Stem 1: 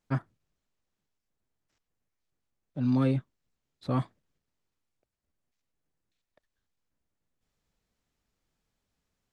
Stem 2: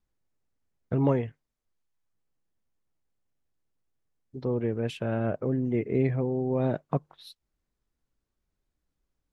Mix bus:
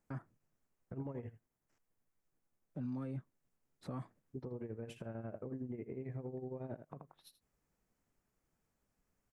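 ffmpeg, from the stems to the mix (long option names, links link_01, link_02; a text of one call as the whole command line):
ffmpeg -i stem1.wav -i stem2.wav -filter_complex "[0:a]highpass=93,acompressor=threshold=-32dB:ratio=6,volume=0dB[link_01];[1:a]acompressor=threshold=-29dB:ratio=6,tremolo=f=11:d=0.78,volume=-2.5dB,asplit=2[link_02][link_03];[link_03]volume=-14dB,aecho=0:1:80:1[link_04];[link_01][link_02][link_04]amix=inputs=3:normalize=0,equalizer=frequency=3800:width=1.3:gain=-12,alimiter=level_in=10dB:limit=-24dB:level=0:latency=1:release=76,volume=-10dB" out.wav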